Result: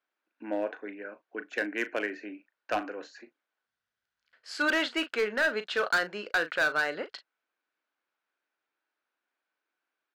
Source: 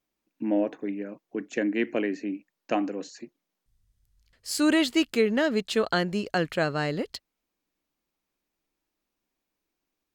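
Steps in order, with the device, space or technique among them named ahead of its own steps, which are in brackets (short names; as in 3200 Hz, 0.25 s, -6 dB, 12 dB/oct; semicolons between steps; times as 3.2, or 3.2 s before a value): megaphone (BPF 550–3300 Hz; bell 1500 Hz +11.5 dB 0.3 oct; hard clip -21 dBFS, distortion -11 dB; doubler 38 ms -12 dB)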